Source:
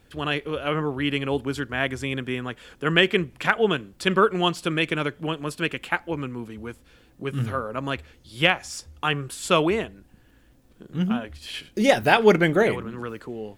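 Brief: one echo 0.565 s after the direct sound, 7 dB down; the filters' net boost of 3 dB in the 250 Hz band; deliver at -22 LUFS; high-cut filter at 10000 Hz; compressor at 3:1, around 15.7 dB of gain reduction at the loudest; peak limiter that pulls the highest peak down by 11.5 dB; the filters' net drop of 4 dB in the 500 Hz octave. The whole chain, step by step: LPF 10000 Hz; bell 250 Hz +6.5 dB; bell 500 Hz -7.5 dB; compressor 3:1, threshold -36 dBFS; limiter -27 dBFS; echo 0.565 s -7 dB; gain +16.5 dB

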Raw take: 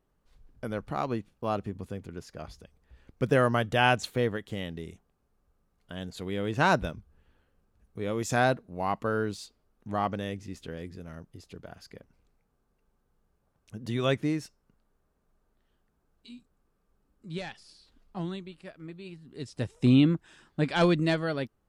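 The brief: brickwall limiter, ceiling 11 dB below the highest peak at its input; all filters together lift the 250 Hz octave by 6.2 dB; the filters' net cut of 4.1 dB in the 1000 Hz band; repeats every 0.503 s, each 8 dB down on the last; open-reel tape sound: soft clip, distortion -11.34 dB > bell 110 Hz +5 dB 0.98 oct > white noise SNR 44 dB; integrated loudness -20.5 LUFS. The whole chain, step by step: bell 250 Hz +7 dB; bell 1000 Hz -6.5 dB; limiter -18 dBFS; feedback echo 0.503 s, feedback 40%, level -8 dB; soft clip -25.5 dBFS; bell 110 Hz +5 dB 0.98 oct; white noise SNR 44 dB; gain +13.5 dB

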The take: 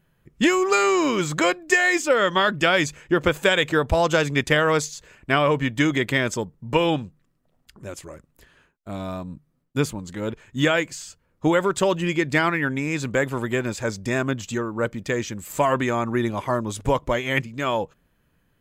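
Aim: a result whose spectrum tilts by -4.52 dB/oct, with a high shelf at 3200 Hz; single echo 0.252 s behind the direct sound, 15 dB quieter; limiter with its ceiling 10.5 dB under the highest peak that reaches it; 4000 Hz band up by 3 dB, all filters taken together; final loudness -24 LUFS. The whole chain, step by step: high shelf 3200 Hz -3.5 dB; bell 4000 Hz +6.5 dB; limiter -15 dBFS; echo 0.252 s -15 dB; gain +2 dB

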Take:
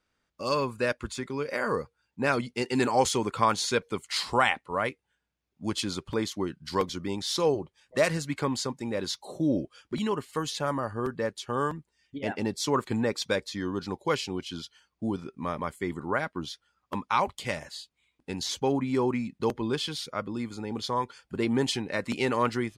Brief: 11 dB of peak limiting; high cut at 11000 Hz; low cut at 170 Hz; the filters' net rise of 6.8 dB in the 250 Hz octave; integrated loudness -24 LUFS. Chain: HPF 170 Hz; LPF 11000 Hz; bell 250 Hz +9 dB; gain +6 dB; limiter -12.5 dBFS

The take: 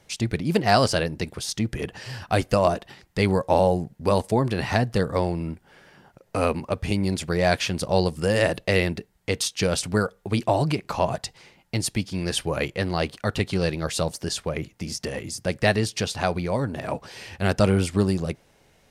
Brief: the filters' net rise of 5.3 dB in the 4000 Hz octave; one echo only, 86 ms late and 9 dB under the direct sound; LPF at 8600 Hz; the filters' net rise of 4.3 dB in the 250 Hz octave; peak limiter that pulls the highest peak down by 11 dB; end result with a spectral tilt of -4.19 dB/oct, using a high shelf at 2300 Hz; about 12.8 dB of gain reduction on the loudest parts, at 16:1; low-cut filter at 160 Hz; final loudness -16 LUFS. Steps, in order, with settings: HPF 160 Hz; LPF 8600 Hz; bell 250 Hz +7.5 dB; high shelf 2300 Hz +3 dB; bell 4000 Hz +4 dB; compressor 16:1, threshold -25 dBFS; limiter -21 dBFS; echo 86 ms -9 dB; gain +16.5 dB

